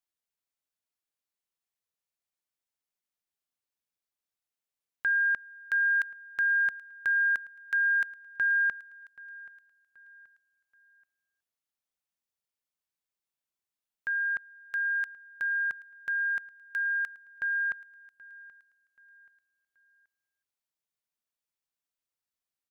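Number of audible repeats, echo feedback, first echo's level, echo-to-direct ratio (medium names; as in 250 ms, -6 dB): 2, 37%, -21.0 dB, -20.5 dB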